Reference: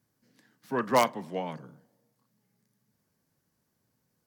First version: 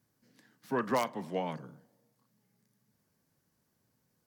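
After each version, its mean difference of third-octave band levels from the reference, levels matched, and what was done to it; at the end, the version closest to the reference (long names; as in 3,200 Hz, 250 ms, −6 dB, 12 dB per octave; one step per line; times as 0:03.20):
3.5 dB: downward compressor 6 to 1, threshold −26 dBFS, peak gain reduction 9 dB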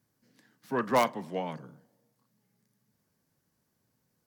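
1.0 dB: soft clipping −14.5 dBFS, distortion −17 dB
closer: second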